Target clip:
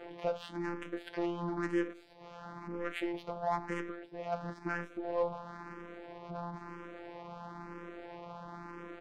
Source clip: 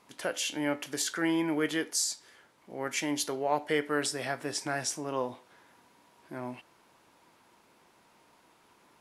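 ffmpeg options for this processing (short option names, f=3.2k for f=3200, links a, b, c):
-filter_complex "[0:a]aeval=exprs='val(0)+0.5*0.0188*sgn(val(0))':c=same,lowpass=3.4k,asplit=3[a][b][c];[a]afade=t=out:st=3.89:d=0.02[d];[b]acompressor=threshold=-34dB:ratio=5,afade=t=in:st=3.89:d=0.02,afade=t=out:st=4.31:d=0.02[e];[c]afade=t=in:st=4.31:d=0.02[f];[d][e][f]amix=inputs=3:normalize=0,asoftclip=type=hard:threshold=-24.5dB,afftfilt=real='hypot(re,im)*cos(PI*b)':imag='0':win_size=1024:overlap=0.75,adynamicsmooth=sensitivity=2:basefreq=870,asplit=2[g][h];[h]adelay=186.6,volume=-26dB,highshelf=f=4k:g=-4.2[i];[g][i]amix=inputs=2:normalize=0,asplit=2[j][k];[k]afreqshift=1[l];[j][l]amix=inputs=2:normalize=1,volume=3.5dB"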